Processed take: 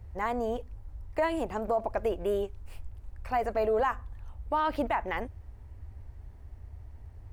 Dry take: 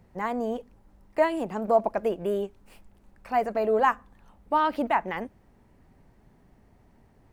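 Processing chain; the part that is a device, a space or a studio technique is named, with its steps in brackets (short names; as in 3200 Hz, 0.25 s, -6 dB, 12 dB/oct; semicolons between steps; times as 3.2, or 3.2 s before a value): car stereo with a boomy subwoofer (resonant low shelf 120 Hz +13 dB, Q 3; limiter -19 dBFS, peak gain reduction 8.5 dB)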